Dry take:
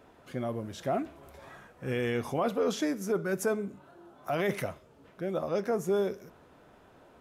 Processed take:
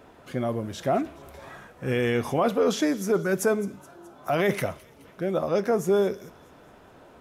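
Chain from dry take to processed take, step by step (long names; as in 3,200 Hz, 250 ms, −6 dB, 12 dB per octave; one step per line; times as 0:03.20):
delay with a high-pass on its return 212 ms, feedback 55%, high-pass 3,100 Hz, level −17.5 dB
level +6 dB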